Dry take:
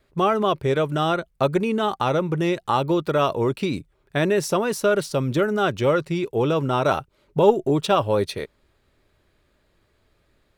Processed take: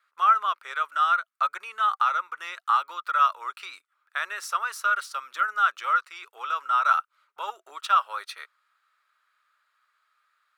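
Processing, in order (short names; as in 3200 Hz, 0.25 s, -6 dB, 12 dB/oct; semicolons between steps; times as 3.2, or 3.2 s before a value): ladder high-pass 1200 Hz, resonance 75%; gain +5 dB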